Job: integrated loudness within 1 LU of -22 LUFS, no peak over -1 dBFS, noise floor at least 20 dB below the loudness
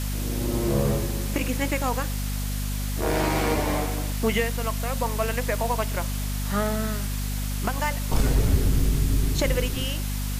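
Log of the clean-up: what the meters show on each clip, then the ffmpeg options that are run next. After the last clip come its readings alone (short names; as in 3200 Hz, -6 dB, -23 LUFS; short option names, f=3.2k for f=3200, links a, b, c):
hum 50 Hz; harmonics up to 250 Hz; hum level -26 dBFS; noise floor -28 dBFS; noise floor target -46 dBFS; loudness -26.0 LUFS; peak -9.5 dBFS; loudness target -22.0 LUFS
-> -af "bandreject=f=50:t=h:w=4,bandreject=f=100:t=h:w=4,bandreject=f=150:t=h:w=4,bandreject=f=200:t=h:w=4,bandreject=f=250:t=h:w=4"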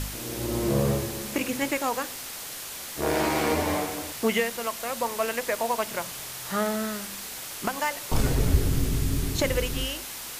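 hum none; noise floor -38 dBFS; noise floor target -48 dBFS
-> -af "afftdn=nr=10:nf=-38"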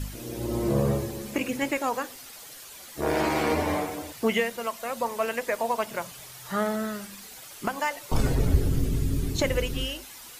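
noise floor -45 dBFS; noise floor target -49 dBFS
-> -af "afftdn=nr=6:nf=-45"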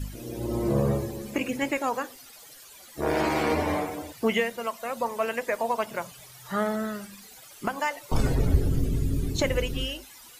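noise floor -49 dBFS; loudness -28.5 LUFS; peak -9.5 dBFS; loudness target -22.0 LUFS
-> -af "volume=6.5dB"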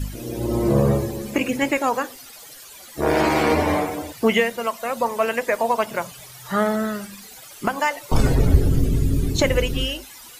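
loudness -22.0 LUFS; peak -3.0 dBFS; noise floor -42 dBFS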